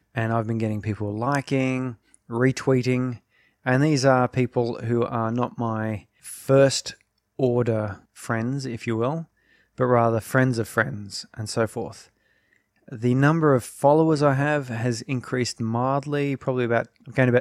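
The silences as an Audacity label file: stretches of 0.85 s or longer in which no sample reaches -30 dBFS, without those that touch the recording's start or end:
11.910000	12.920000	silence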